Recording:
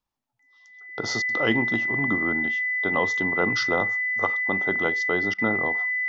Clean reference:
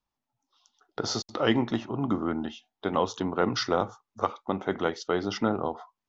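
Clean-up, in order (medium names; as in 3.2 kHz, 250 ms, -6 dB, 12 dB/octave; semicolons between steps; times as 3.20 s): band-stop 2 kHz, Q 30; interpolate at 5.34 s, 42 ms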